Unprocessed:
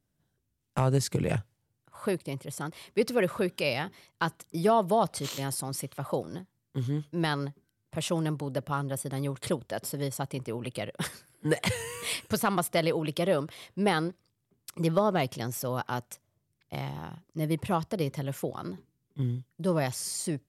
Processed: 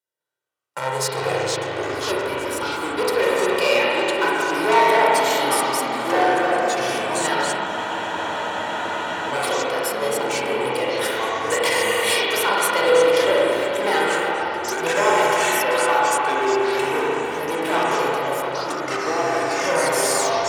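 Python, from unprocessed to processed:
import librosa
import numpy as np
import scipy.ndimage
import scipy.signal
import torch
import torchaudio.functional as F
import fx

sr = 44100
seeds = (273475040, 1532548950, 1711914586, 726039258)

y = fx.tape_stop_end(x, sr, length_s=0.31)
y = fx.hpss(y, sr, part='harmonic', gain_db=4)
y = fx.leveller(y, sr, passes=3)
y = y + 0.69 * np.pad(y, (int(2.1 * sr / 1000.0), 0))[:len(y)]
y = fx.echo_stepped(y, sr, ms=458, hz=1200.0, octaves=1.4, feedback_pct=70, wet_db=-11.0)
y = fx.rev_spring(y, sr, rt60_s=3.1, pass_ms=(30, 44), chirp_ms=30, drr_db=-5.5)
y = fx.echo_pitch(y, sr, ms=204, semitones=-4, count=3, db_per_echo=-3.0)
y = scipy.signal.sosfilt(scipy.signal.butter(2, 590.0, 'highpass', fs=sr, output='sos'), y)
y = fx.spec_freeze(y, sr, seeds[0], at_s=7.68, hold_s=1.64)
y = y * 10.0 ** (-4.5 / 20.0)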